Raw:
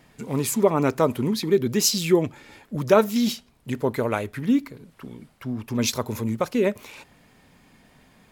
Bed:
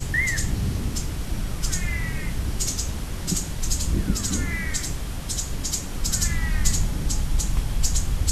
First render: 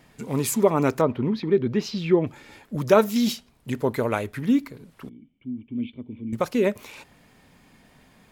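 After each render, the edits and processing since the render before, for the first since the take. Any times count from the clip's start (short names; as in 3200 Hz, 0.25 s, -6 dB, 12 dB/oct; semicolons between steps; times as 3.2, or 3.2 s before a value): 1.01–2.27 air absorption 300 m; 5.09–6.33 vocal tract filter i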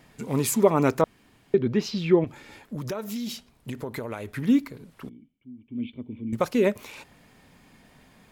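1.04–1.54 room tone; 2.24–4.37 compressor, threshold -29 dBFS; 5.07–5.92 dip -11.5 dB, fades 0.34 s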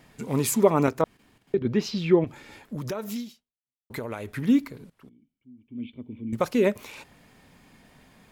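0.86–1.65 level quantiser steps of 10 dB; 3.2–3.9 fade out exponential; 4.9–6.5 fade in, from -14.5 dB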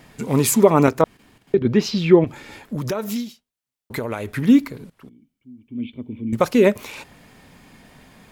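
gain +7 dB; limiter -1 dBFS, peak gain reduction 3 dB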